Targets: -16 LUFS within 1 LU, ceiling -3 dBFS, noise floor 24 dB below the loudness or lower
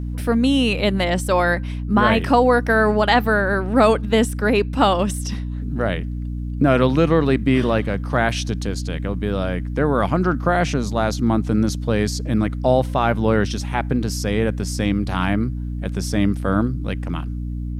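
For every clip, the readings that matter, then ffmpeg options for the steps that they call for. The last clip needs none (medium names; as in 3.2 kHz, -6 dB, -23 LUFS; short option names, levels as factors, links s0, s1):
hum 60 Hz; highest harmonic 300 Hz; hum level -24 dBFS; loudness -20.0 LUFS; peak level -3.0 dBFS; loudness target -16.0 LUFS
-> -af "bandreject=f=60:t=h:w=6,bandreject=f=120:t=h:w=6,bandreject=f=180:t=h:w=6,bandreject=f=240:t=h:w=6,bandreject=f=300:t=h:w=6"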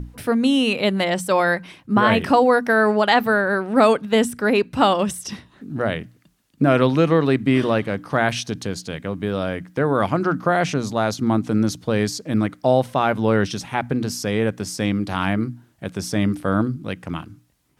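hum not found; loudness -20.5 LUFS; peak level -3.0 dBFS; loudness target -16.0 LUFS
-> -af "volume=1.68,alimiter=limit=0.708:level=0:latency=1"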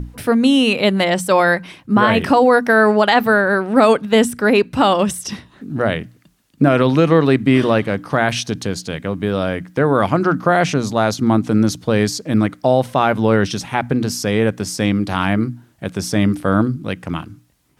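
loudness -16.5 LUFS; peak level -3.0 dBFS; noise floor -52 dBFS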